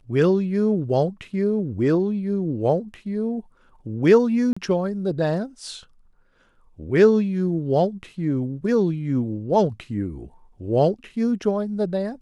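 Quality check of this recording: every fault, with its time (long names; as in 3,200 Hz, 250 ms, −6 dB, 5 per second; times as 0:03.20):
0:04.53–0:04.57: drop-out 35 ms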